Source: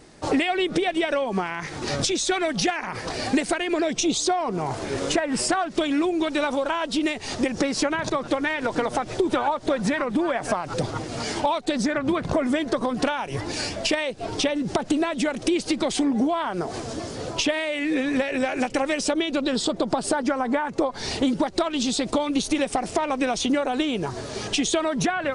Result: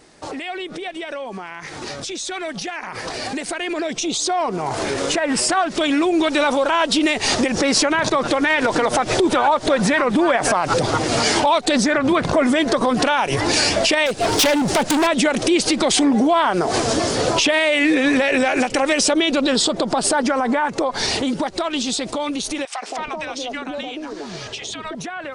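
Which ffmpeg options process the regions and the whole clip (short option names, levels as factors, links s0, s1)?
-filter_complex "[0:a]asettb=1/sr,asplit=3[s0][s1][s2];[s0]atrim=end=14.064[s3];[s1]atrim=start=14.06:end=15.07,asetpts=PTS-STARTPTS,afade=t=in:d=0.004:c=qsin,afade=t=out:st=1.006:d=0.004:c=qsin,highshelf=f=8200:g=9.5,asoftclip=type=hard:threshold=0.0398[s4];[s2]atrim=start=15.066[s5];[s3][s4]acrossfade=d=0.004:c1=hsin:c2=qsin[s6];[s6][s5]acrossfade=d=0.004:c1=qsin:c2=hsin,asettb=1/sr,asplit=3[s7][s8][s9];[s7]atrim=end=22.654[s10];[s8]atrim=start=22.65:end=24.95,asetpts=PTS-STARTPTS,afade=t=in:d=0.004:c=qsin,afade=t=out:st=2.296:d=0.004:c=qsin,lowpass=6000,acrossover=split=260|830[s11][s12][s13];[s12]adelay=170[s14];[s11]adelay=330[s15];[s15][s14][s13]amix=inputs=3:normalize=0,atrim=end_sample=101430[s16];[s9]atrim=start=24.946[s17];[s10][s16]acrossfade=d=0.004:c1=hsin:c2=qsin[s18];[s18][s17]acrossfade=d=0.004:c1=qsin:c2=hsin,alimiter=limit=0.0794:level=0:latency=1:release=100,lowshelf=f=300:g=-7.5,dynaudnorm=f=750:g=13:m=4.73,volume=1.26"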